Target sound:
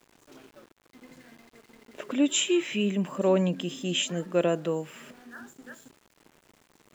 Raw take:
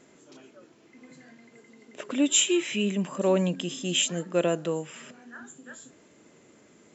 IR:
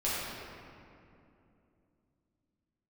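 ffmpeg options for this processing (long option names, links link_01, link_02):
-af "aemphasis=mode=reproduction:type=cd,aeval=exprs='val(0)*gte(abs(val(0)),0.00266)':channel_layout=same"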